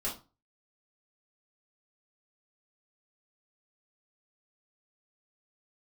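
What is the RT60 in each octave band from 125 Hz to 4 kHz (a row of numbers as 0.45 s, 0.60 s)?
0.45 s, 0.35 s, 0.30 s, 0.30 s, 0.25 s, 0.25 s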